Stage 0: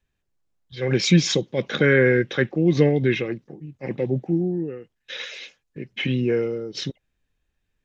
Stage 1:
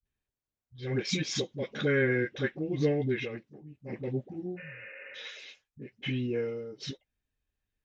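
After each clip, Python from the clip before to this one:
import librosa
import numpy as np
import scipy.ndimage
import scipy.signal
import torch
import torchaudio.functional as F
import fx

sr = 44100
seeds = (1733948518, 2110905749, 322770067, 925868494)

y = fx.spec_repair(x, sr, seeds[0], start_s=4.54, length_s=0.54, low_hz=220.0, high_hz=2900.0, source='after')
y = fx.notch_comb(y, sr, f0_hz=170.0)
y = fx.dispersion(y, sr, late='highs', ms=56.0, hz=330.0)
y = y * 10.0 ** (-8.5 / 20.0)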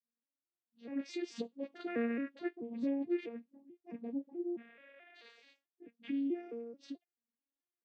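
y = fx.vocoder_arp(x, sr, chord='minor triad', root=58, every_ms=217)
y = y * 10.0 ** (-6.5 / 20.0)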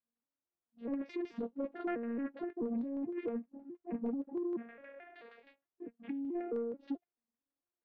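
y = fx.over_compress(x, sr, threshold_db=-40.0, ratio=-1.0)
y = fx.leveller(y, sr, passes=1)
y = fx.filter_lfo_lowpass(y, sr, shape='saw_down', hz=6.4, low_hz=810.0, high_hz=1800.0, q=0.83)
y = y * 10.0 ** (1.5 / 20.0)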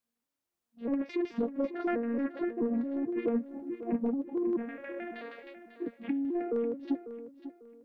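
y = fx.rider(x, sr, range_db=4, speed_s=0.5)
y = fx.echo_feedback(y, sr, ms=546, feedback_pct=29, wet_db=-12.5)
y = y * 10.0 ** (6.5 / 20.0)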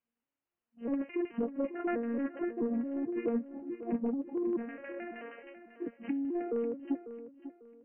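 y = fx.brickwall_lowpass(x, sr, high_hz=3100.0)
y = y * 10.0 ** (-2.0 / 20.0)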